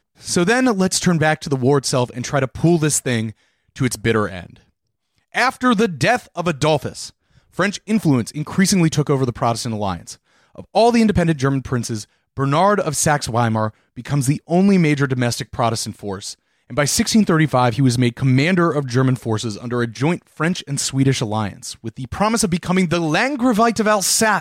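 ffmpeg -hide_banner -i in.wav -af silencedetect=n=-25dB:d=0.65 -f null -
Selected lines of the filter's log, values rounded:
silence_start: 4.43
silence_end: 5.35 | silence_duration: 0.91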